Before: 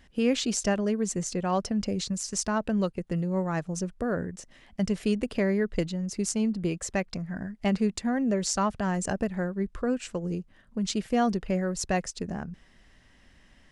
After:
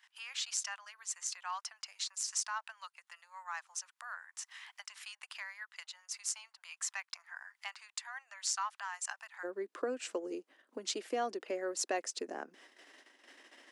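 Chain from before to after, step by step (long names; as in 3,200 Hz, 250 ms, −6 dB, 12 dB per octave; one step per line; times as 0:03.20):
downward compressor 2.5 to 1, threshold −43 dBFS, peak gain reduction 15.5 dB
noise gate −56 dBFS, range −13 dB
Butterworth high-pass 900 Hz 48 dB per octave, from 0:09.43 290 Hz
level +6.5 dB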